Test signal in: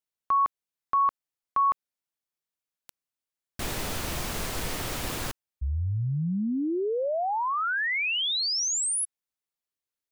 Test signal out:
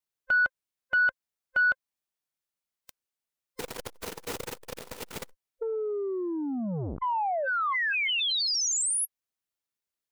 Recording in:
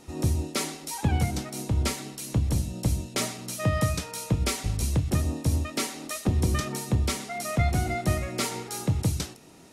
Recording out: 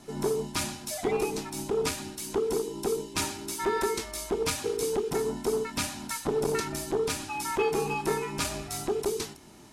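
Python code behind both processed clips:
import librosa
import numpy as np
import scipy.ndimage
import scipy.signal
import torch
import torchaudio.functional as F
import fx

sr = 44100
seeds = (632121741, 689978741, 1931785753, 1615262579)

y = fx.band_invert(x, sr, width_hz=500)
y = fx.dynamic_eq(y, sr, hz=350.0, q=0.89, threshold_db=-32.0, ratio=4.0, max_db=-3)
y = fx.transformer_sat(y, sr, knee_hz=600.0)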